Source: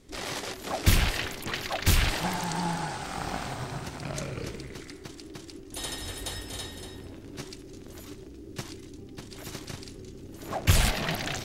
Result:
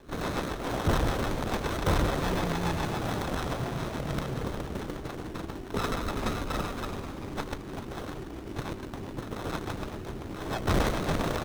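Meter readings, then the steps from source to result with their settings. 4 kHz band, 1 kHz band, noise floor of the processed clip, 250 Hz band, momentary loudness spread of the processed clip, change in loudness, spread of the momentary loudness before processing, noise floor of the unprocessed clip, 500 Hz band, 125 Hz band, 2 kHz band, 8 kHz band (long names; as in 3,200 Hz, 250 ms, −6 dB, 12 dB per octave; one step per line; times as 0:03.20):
−5.5 dB, +2.0 dB, −40 dBFS, +4.0 dB, 11 LU, −1.5 dB, 20 LU, −46 dBFS, +5.0 dB, −0.5 dB, −2.5 dB, −8.0 dB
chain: parametric band 8,900 Hz +12.5 dB 2.5 octaves
in parallel at −1 dB: downward compressor, threshold −34 dBFS, peak gain reduction 19.5 dB
on the sum: decimation without filtering 17×
rotating-speaker cabinet horn 7 Hz
soft clipping −19.5 dBFS, distortion −10 dB
on a send: echo with shifted repeats 387 ms, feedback 53%, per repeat −58 Hz, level −8 dB
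on the sum: windowed peak hold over 17 samples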